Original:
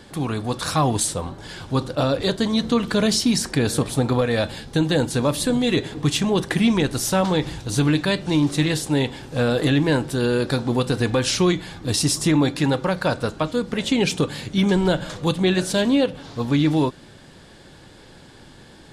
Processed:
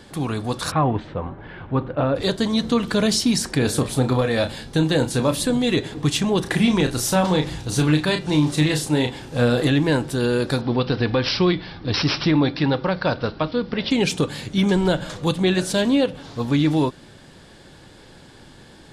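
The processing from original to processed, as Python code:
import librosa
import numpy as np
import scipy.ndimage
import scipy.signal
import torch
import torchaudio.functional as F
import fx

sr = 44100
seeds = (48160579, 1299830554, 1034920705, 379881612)

y = fx.lowpass(x, sr, hz=2400.0, slope=24, at=(0.7, 2.15), fade=0.02)
y = fx.doubler(y, sr, ms=31.0, db=-9, at=(3.58, 5.42))
y = fx.doubler(y, sr, ms=33.0, db=-6.5, at=(6.41, 9.67))
y = fx.resample_bad(y, sr, factor=4, down='none', up='filtered', at=(10.61, 13.91))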